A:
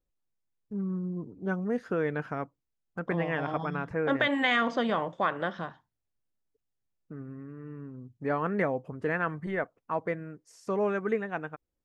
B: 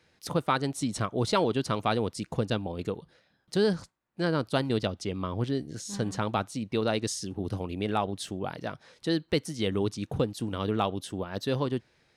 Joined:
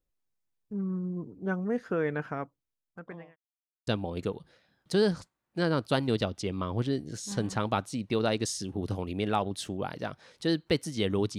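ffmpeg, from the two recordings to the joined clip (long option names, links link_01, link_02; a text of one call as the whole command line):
ffmpeg -i cue0.wav -i cue1.wav -filter_complex "[0:a]apad=whole_dur=11.38,atrim=end=11.38,asplit=2[link_01][link_02];[link_01]atrim=end=3.36,asetpts=PTS-STARTPTS,afade=type=out:start_time=2.28:duration=1.08[link_03];[link_02]atrim=start=3.36:end=3.87,asetpts=PTS-STARTPTS,volume=0[link_04];[1:a]atrim=start=2.49:end=10,asetpts=PTS-STARTPTS,afade=type=in:duration=0.004:curve=hsin[link_05];[link_03][link_04][link_05]concat=n=3:v=0:a=1" out.wav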